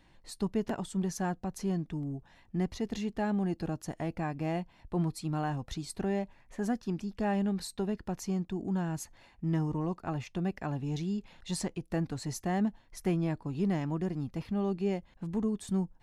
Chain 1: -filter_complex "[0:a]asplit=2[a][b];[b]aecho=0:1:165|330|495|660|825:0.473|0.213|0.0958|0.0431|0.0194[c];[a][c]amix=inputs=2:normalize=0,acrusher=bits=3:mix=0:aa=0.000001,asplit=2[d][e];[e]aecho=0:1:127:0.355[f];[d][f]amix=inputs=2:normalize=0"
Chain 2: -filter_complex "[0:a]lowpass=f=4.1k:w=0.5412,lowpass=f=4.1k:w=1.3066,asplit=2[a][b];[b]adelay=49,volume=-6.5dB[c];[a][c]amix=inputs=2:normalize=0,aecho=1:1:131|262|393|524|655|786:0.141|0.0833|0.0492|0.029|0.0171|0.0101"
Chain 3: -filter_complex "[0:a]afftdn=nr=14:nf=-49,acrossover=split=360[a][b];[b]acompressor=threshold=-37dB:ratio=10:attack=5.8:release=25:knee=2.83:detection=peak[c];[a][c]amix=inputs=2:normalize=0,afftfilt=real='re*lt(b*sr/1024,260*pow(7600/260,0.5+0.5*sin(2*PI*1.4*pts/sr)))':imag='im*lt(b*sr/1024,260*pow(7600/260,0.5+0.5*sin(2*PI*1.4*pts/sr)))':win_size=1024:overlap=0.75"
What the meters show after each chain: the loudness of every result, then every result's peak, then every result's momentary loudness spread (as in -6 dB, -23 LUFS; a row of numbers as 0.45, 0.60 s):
-34.5, -33.0, -35.0 LUFS; -14.5, -17.0, -20.5 dBFS; 12, 6, 6 LU